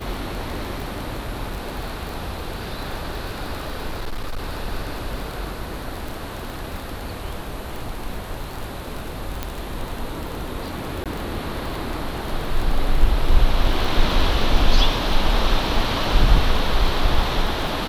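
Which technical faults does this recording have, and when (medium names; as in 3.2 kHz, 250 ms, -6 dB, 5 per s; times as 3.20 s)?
crackle 24 per s -25 dBFS
3.88–4.46 s: clipped -22.5 dBFS
9.43 s: pop -10 dBFS
11.04–11.06 s: dropout 17 ms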